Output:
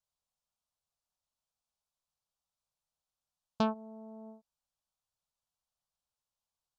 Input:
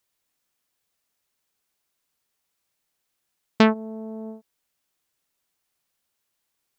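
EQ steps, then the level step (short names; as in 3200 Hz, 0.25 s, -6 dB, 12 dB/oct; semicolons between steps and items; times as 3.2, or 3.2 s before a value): air absorption 51 m; low shelf 89 Hz +6.5 dB; fixed phaser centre 820 Hz, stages 4; -8.5 dB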